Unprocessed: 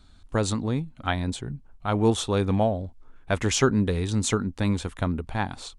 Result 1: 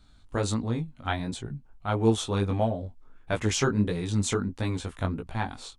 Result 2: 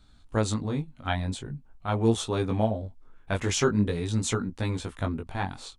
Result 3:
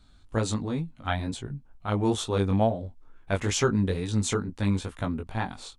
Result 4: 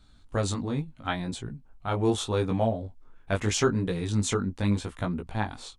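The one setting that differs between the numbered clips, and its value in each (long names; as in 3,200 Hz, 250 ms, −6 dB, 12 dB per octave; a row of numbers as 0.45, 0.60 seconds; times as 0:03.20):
chorus effect, speed: 1.5, 0.45, 2.2, 0.78 Hertz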